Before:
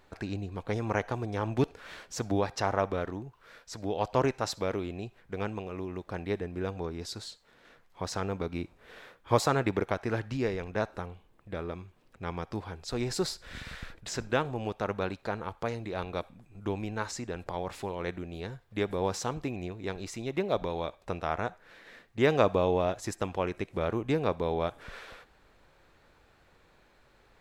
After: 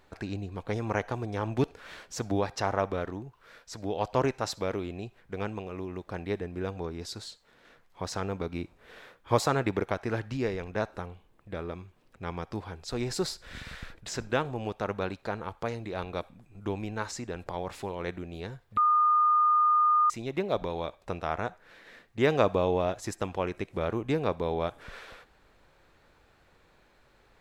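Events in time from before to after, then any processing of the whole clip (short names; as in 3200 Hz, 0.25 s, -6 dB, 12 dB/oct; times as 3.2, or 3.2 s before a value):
18.77–20.1 bleep 1220 Hz -19.5 dBFS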